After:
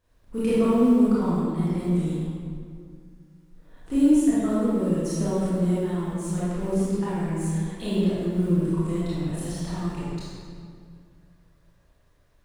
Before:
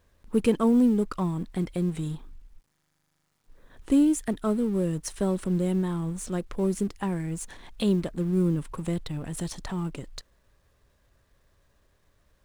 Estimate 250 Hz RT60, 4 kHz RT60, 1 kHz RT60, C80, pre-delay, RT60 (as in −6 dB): 2.6 s, 1.4 s, 2.1 s, −2.0 dB, 22 ms, 2.2 s